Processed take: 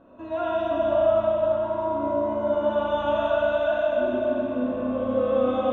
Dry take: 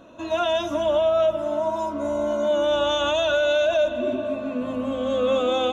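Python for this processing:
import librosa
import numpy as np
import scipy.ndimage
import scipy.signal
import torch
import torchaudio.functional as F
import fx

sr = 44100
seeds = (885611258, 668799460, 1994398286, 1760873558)

y = scipy.signal.sosfilt(scipy.signal.butter(2, 1600.0, 'lowpass', fs=sr, output='sos'), x)
y = fx.rev_schroeder(y, sr, rt60_s=3.8, comb_ms=28, drr_db=-4.5)
y = F.gain(torch.from_numpy(y), -6.0).numpy()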